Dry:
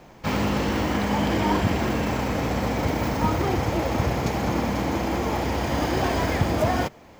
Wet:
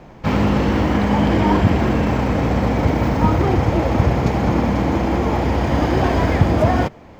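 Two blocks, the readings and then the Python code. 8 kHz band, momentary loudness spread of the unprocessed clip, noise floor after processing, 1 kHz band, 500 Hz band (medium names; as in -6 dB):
-3.0 dB, 3 LU, -41 dBFS, +5.0 dB, +6.0 dB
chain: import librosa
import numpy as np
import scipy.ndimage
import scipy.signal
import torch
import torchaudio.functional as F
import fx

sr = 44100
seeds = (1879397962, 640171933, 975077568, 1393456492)

y = fx.lowpass(x, sr, hz=2700.0, slope=6)
y = fx.low_shelf(y, sr, hz=260.0, db=4.5)
y = y * 10.0 ** (5.0 / 20.0)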